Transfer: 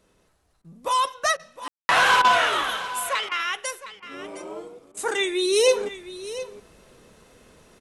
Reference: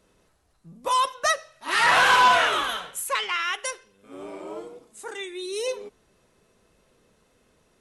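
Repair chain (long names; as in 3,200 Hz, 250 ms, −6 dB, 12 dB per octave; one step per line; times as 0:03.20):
ambience match 0:01.68–0:01.89
repair the gap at 0:00.62/0:01.37/0:02.22/0:03.29/0:04.00/0:04.92, 23 ms
echo removal 712 ms −14.5 dB
level 0 dB, from 0:04.97 −10.5 dB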